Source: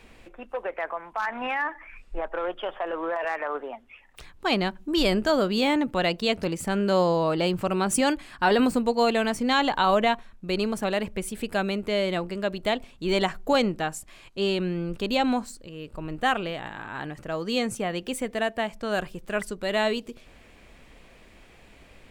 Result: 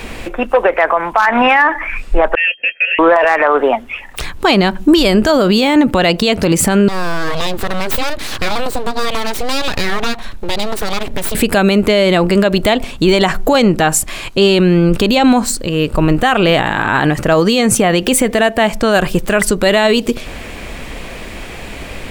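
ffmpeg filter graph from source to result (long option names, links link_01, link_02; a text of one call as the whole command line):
ffmpeg -i in.wav -filter_complex "[0:a]asettb=1/sr,asplit=3[link_01][link_02][link_03];[link_01]atrim=end=2.354[link_04];[link_02]atrim=start=2.35:end=2.99,asetpts=PTS-STARTPTS,afade=type=in:duration=0.004:curve=qsin,afade=type=out:start_time=0.636:duration=0.004:curve=qsin,agate=range=-15dB:threshold=-37dB:ratio=16:release=100:detection=peak,lowpass=frequency=2700:width_type=q:width=0.5098,lowpass=frequency=2700:width_type=q:width=0.6013,lowpass=frequency=2700:width_type=q:width=0.9,lowpass=frequency=2700:width_type=q:width=2.563,afreqshift=-3200,asplit=3[link_05][link_06][link_07];[link_05]bandpass=frequency=530:width_type=q:width=8,volume=0dB[link_08];[link_06]bandpass=frequency=1840:width_type=q:width=8,volume=-6dB[link_09];[link_07]bandpass=frequency=2480:width_type=q:width=8,volume=-9dB[link_10];[link_08][link_09][link_10]amix=inputs=3:normalize=0[link_11];[link_03]atrim=start=2.986[link_12];[link_04][link_11]acrossfade=duration=0.004:curve1=hsin:curve2=qsin[link_13];[link_13][link_12]acrossfade=duration=0.004:curve1=qsin:curve2=hsin,asettb=1/sr,asplit=3[link_14][link_15][link_16];[link_14]atrim=end=6.884[link_17];[link_15]atrim=start=6.88:end=11.35,asetpts=PTS-STARTPTS,afade=type=in:duration=0.004:curve=qsin,afade=type=out:start_time=4.466:duration=0.004:curve=qsin,acompressor=threshold=-39dB:ratio=4:attack=3.2:release=140:knee=1:detection=peak,aeval=exprs='abs(val(0))':channel_layout=same,equalizer=frequency=3900:width=3.8:gain=5[link_18];[link_16]atrim=start=11.346[link_19];[link_17][link_18]acrossfade=duration=0.004:curve1=hsin:curve2=qsin[link_20];[link_20][link_19]acrossfade=duration=0.004:curve1=qsin:curve2=hsin,highshelf=frequency=11000:gain=4.5,acompressor=threshold=-28dB:ratio=2.5,alimiter=level_in=25dB:limit=-1dB:release=50:level=0:latency=1,volume=-1dB" out.wav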